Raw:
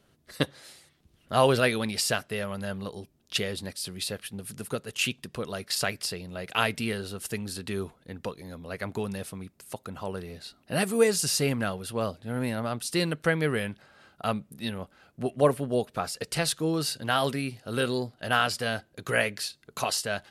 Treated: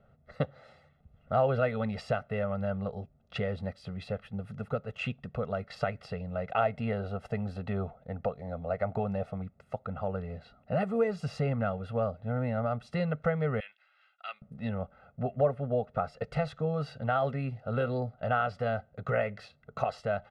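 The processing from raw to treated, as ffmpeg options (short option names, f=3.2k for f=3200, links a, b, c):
-filter_complex "[0:a]asettb=1/sr,asplit=3[a][b][c];[a]atrim=end=6.504[d];[b]atrim=start=6.5:end=9.42,asetpts=PTS-STARTPTS,afade=t=in:d=0.004:c=qsin,afade=t=out:st=2.916:d=0.004:c=qsin,equalizer=f=690:t=o:w=0.69:g=7.5[e];[c]atrim=start=9.416[f];[d][e]acrossfade=d=0.004:c1=hsin:c2=qsin[g];[g][f]acrossfade=d=0.004:c1=qsin:c2=hsin,asettb=1/sr,asplit=3[h][i][j];[h]atrim=end=13.604[k];[i]atrim=start=13.6:end=14.42,asetpts=PTS-STARTPTS,afade=t=in:d=0.004:c=qsin,afade=t=out:st=0.816:d=0.004:c=qsin,highpass=f=2.6k:t=q:w=1.8[l];[j]atrim=start=14.416[m];[k][l]acrossfade=d=0.004:c1=hsin:c2=qsin[n];[n][m]acrossfade=d=0.004:c1=qsin:c2=hsin,lowpass=1.3k,aecho=1:1:1.5:0.99,acompressor=threshold=-28dB:ratio=2"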